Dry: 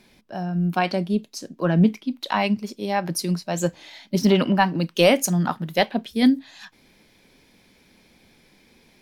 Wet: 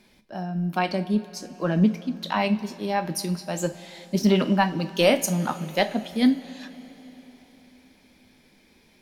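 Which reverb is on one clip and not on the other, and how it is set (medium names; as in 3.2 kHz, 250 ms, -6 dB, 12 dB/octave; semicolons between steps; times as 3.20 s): two-slope reverb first 0.29 s, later 4.2 s, from -19 dB, DRR 8 dB; trim -3 dB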